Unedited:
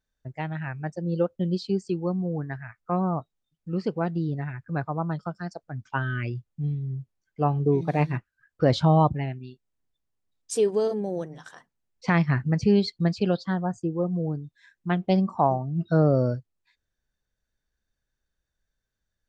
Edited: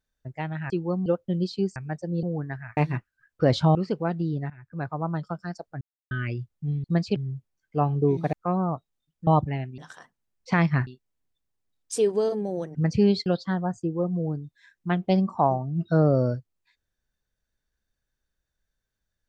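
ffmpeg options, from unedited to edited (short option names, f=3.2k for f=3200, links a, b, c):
-filter_complex "[0:a]asplit=18[a][b][c][d][e][f][g][h][i][j][k][l][m][n][o][p][q][r];[a]atrim=end=0.702[s];[b]atrim=start=1.868:end=2.232[t];[c]atrim=start=1.168:end=1.872[u];[d]atrim=start=0.698:end=1.172[v];[e]atrim=start=2.228:end=2.772[w];[f]atrim=start=7.968:end=8.952[x];[g]atrim=start=3.708:end=4.46,asetpts=PTS-STARTPTS,afade=t=out:st=0.748:d=0.004:c=hsin:silence=0.105925[y];[h]atrim=start=4.46:end=5.77,asetpts=PTS-STARTPTS,afade=t=in:d=0.68:c=qsin:silence=0.105925,afade=t=out:st=1.306:d=0.004:c=hsin[z];[i]atrim=start=5.77:end=6.07,asetpts=PTS-STARTPTS,volume=0[aa];[j]atrim=start=6.07:end=6.802,asetpts=PTS-STARTPTS,afade=t=in:d=0.004:c=hsin[ab];[k]atrim=start=12.938:end=13.262[ac];[l]atrim=start=6.798:end=7.972[ad];[m]atrim=start=2.768:end=3.712[ae];[n]atrim=start=8.948:end=9.462[af];[o]atrim=start=11.338:end=12.432[ag];[p]atrim=start=9.458:end=11.342[ah];[q]atrim=start=12.428:end=12.942[ai];[r]atrim=start=13.258[aj];[s][t]acrossfade=d=0.004:c1=hsin:c2=hsin[ak];[ak][u]acrossfade=d=0.004:c1=hsin:c2=hsin[al];[al][v]acrossfade=d=0.004:c1=hsin:c2=hsin[am];[am][w]acrossfade=d=0.004:c1=hsin:c2=hsin[an];[an][x]acrossfade=d=0.004:c1=hsin:c2=hsin[ao];[y][z][aa][ab]concat=n=4:v=0:a=1[ap];[ao][ap]acrossfade=d=0.004:c1=hsin:c2=hsin[aq];[aq][ac]acrossfade=d=0.004:c1=hsin:c2=hsin[ar];[ar][ad]acrossfade=d=0.004:c1=hsin:c2=hsin[as];[as][ae]acrossfade=d=0.004:c1=hsin:c2=hsin[at];[at][af]acrossfade=d=0.004:c1=hsin:c2=hsin[au];[au][ag]acrossfade=d=0.004:c1=hsin:c2=hsin[av];[av][ah]acrossfade=d=0.004:c1=hsin:c2=hsin[aw];[aw][ai]acrossfade=d=0.004:c1=hsin:c2=hsin[ax];[ax][aj]acrossfade=d=0.004:c1=hsin:c2=hsin"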